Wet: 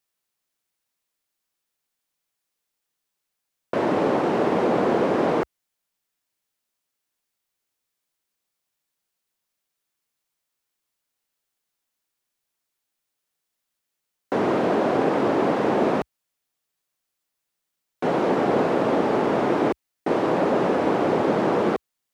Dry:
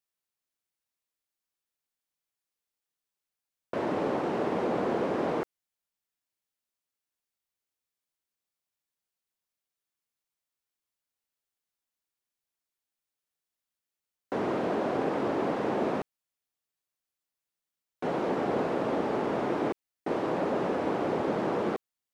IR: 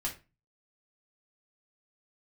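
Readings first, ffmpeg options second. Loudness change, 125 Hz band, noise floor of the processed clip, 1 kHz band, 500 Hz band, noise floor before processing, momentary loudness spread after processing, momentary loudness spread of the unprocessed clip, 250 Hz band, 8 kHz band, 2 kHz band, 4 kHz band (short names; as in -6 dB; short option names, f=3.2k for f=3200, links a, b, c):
+8.0 dB, +7.5 dB, -82 dBFS, +8.0 dB, +8.0 dB, under -85 dBFS, 6 LU, 6 LU, +8.0 dB, n/a, +8.0 dB, +8.0 dB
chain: -af "equalizer=f=63:t=o:w=0.56:g=-8,volume=8dB"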